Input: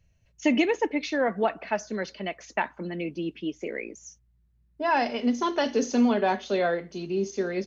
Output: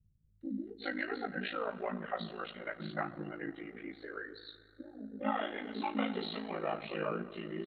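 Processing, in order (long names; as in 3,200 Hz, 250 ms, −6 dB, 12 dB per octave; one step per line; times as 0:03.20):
partials spread apart or drawn together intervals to 86%
dynamic equaliser 400 Hz, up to −7 dB, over −37 dBFS, Q 0.75
downward compressor, threshold −27 dBFS, peak gain reduction 5.5 dB
multiband delay without the direct sound lows, highs 410 ms, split 330 Hz
dense smooth reverb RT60 2.7 s, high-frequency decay 0.55×, DRR 12.5 dB
ring modulation 27 Hz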